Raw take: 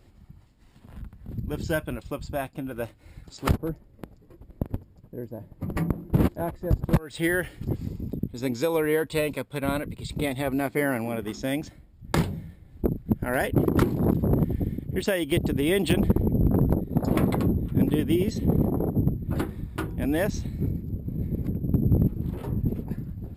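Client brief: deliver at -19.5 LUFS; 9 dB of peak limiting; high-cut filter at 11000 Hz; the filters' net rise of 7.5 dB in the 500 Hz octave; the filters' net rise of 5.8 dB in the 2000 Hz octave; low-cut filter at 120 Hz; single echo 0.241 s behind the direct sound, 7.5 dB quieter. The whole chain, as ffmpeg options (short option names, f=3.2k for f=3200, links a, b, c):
-af "highpass=120,lowpass=11k,equalizer=f=500:t=o:g=9,equalizer=f=2k:t=o:g=6.5,alimiter=limit=-12.5dB:level=0:latency=1,aecho=1:1:241:0.422,volume=5.5dB"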